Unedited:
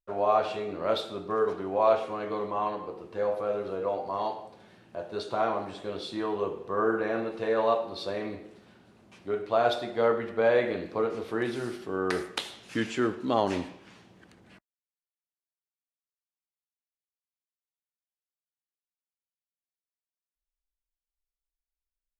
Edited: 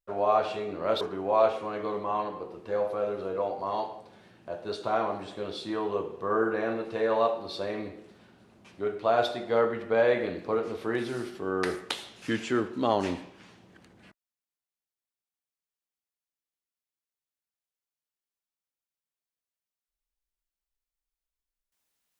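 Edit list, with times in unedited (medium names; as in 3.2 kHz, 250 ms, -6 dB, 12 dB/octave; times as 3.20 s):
1.01–1.48 s: delete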